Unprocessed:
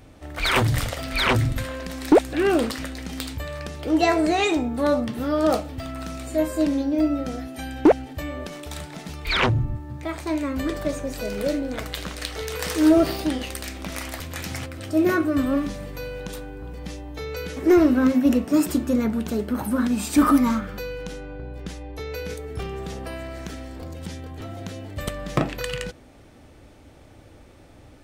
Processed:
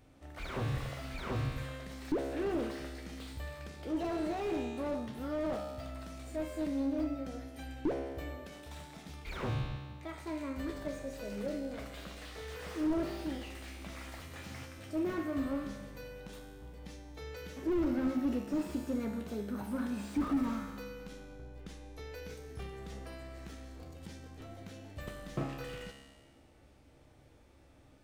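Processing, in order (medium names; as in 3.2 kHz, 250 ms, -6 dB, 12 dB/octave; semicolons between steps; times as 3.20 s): feedback comb 68 Hz, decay 1.4 s, harmonics all, mix 80%; slew-rate limiter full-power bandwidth 16 Hz; trim -1.5 dB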